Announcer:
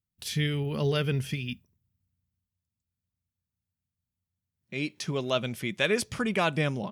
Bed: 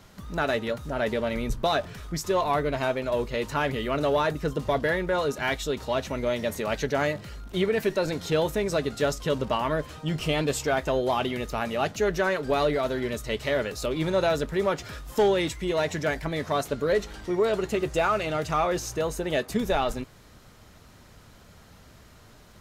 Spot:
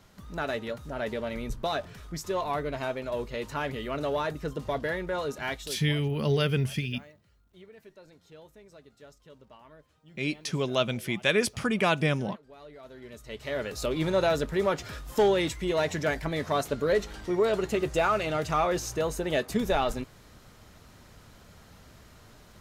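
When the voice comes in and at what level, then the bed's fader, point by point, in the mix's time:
5.45 s, +1.5 dB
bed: 5.5 s -5.5 dB
6.17 s -26.5 dB
12.56 s -26.5 dB
13.8 s -1 dB

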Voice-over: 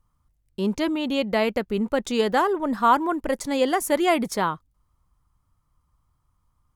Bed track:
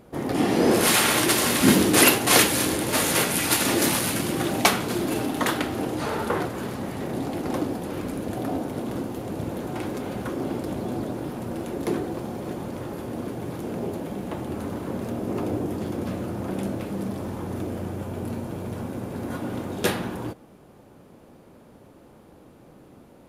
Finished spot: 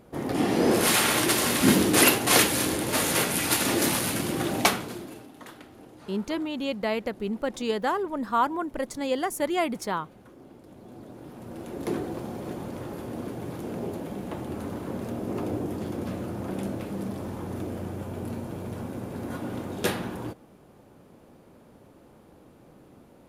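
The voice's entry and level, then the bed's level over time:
5.50 s, -5.5 dB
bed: 4.67 s -2.5 dB
5.28 s -21 dB
10.59 s -21 dB
11.94 s -3 dB

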